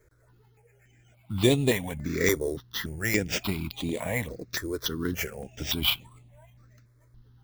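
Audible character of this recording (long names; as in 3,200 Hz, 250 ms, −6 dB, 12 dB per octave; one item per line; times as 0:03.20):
aliases and images of a low sample rate 9,300 Hz, jitter 0%
notches that jump at a steady rate 3.5 Hz 770–5,400 Hz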